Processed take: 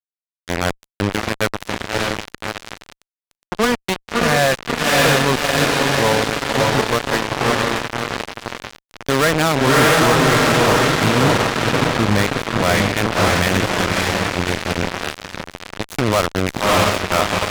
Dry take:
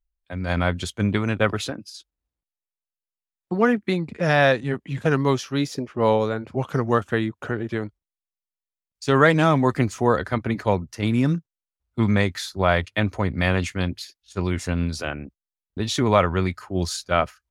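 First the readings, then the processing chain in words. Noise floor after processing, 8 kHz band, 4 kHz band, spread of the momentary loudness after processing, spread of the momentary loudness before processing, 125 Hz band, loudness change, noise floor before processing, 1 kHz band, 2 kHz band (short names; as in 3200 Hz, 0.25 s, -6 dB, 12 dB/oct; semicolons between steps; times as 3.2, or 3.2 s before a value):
under -85 dBFS, +13.0 dB, +12.0 dB, 14 LU, 12 LU, +2.5 dB, +5.5 dB, under -85 dBFS, +7.5 dB, +8.5 dB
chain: power-law curve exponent 2; diffused feedback echo 0.609 s, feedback 69%, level -3 dB; fuzz box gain 35 dB, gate -32 dBFS; gain +4 dB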